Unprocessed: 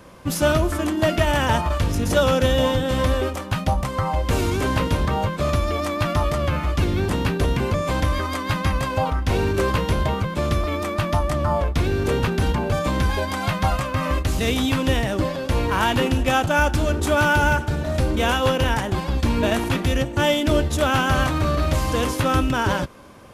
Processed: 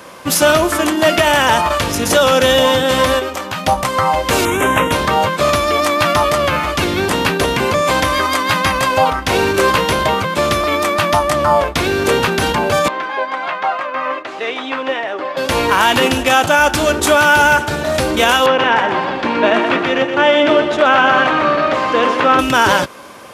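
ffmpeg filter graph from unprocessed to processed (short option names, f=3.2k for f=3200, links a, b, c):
-filter_complex "[0:a]asettb=1/sr,asplit=3[a][b][c];[a]atrim=end=3.194[d];[b]atrim=start=3.19:end=3.64,asetpts=PTS-STARTPTS,afade=t=in:d=0.004:c=qsin,afade=t=out:st=0.446:d=0.004:c=qsin,equalizer=f=9.7k:w=4.8:g=-9.5,acompressor=threshold=-30dB:ratio=2:attack=3.2:release=140:knee=1:detection=peak[e];[c]atrim=start=3.636[f];[d][e]acrossfade=d=0.004:c1=hsin:c2=qsin[g];[g][f]acrossfade=d=0.004:c1=qsin:c2=hsin,asettb=1/sr,asplit=3[h][i][j];[h]atrim=end=4.454[k];[i]atrim=start=4.45:end=4.92,asetpts=PTS-STARTPTS,afade=t=in:d=0.004:c=qsin,afade=t=out:st=0.466:d=0.004:c=qsin,asuperstop=centerf=4500:order=4:qfactor=1.1,equalizer=f=3.8k:t=o:w=0.28:g=9.5[l];[j]atrim=start=4.916[m];[k][l]acrossfade=d=0.004:c1=hsin:c2=qsin[n];[n][m]acrossfade=d=0.004:c1=qsin:c2=hsin,asettb=1/sr,asplit=3[o][p][q];[o]atrim=end=12.884[r];[p]atrim=start=12.88:end=15.37,asetpts=PTS-STARTPTS,afade=t=in:d=0.004:c=qsin,afade=t=out:st=2.486:d=0.004:c=qsin,highpass=430,lowpass=2.1k,flanger=delay=2.3:depth=1.8:regen=62:speed=1.3:shape=triangular[s];[q]atrim=start=15.366[t];[r][s]acrossfade=d=0.004:c1=hsin:c2=qsin[u];[u][t]acrossfade=d=0.004:c1=qsin:c2=hsin,asettb=1/sr,asplit=3[v][w][x];[v]atrim=end=18.464[y];[w]atrim=start=18.46:end=22.39,asetpts=PTS-STARTPTS,afade=t=in:d=0.004:c=qsin,afade=t=out:st=3.926:d=0.004:c=qsin,highpass=210,lowpass=2.4k,aecho=1:1:123|246|369|492|615|738:0.398|0.211|0.112|0.0593|0.0314|0.0166,atrim=end_sample=173313[z];[x]atrim=start=22.386[aa];[y][z]acrossfade=d=0.004:c1=hsin:c2=qsin[ab];[ab][aa]acrossfade=d=0.004:c1=qsin:c2=hsin,highpass=f=610:p=1,alimiter=level_in=14dB:limit=-1dB:release=50:level=0:latency=1,volume=-1dB"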